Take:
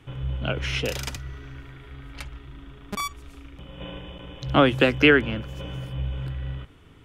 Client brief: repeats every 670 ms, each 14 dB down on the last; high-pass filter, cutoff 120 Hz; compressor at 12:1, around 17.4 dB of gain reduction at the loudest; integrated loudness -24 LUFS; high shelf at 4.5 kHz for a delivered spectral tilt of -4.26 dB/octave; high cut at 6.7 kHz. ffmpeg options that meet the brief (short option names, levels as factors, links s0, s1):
-af "highpass=120,lowpass=6700,highshelf=f=4500:g=-4,acompressor=threshold=0.0316:ratio=12,aecho=1:1:670|1340:0.2|0.0399,volume=4.73"